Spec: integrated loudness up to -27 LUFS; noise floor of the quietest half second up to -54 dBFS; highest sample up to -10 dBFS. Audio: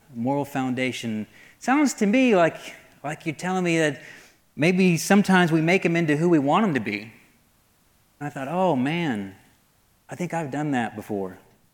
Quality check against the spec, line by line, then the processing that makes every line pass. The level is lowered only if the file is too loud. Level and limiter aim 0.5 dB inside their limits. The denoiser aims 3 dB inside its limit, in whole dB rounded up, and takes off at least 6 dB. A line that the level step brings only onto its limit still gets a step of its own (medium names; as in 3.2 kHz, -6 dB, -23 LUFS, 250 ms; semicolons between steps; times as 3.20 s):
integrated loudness -23.0 LUFS: fail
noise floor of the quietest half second -62 dBFS: pass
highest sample -7.0 dBFS: fail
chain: trim -4.5 dB